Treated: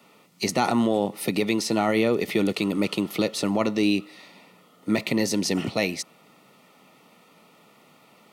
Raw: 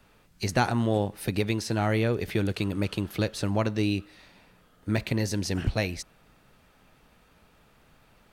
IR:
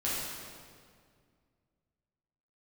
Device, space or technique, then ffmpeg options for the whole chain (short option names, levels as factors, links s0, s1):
PA system with an anti-feedback notch: -af "highpass=f=170:w=0.5412,highpass=f=170:w=1.3066,asuperstop=centerf=1600:order=8:qfactor=5.1,alimiter=limit=0.119:level=0:latency=1:release=15,volume=2.11"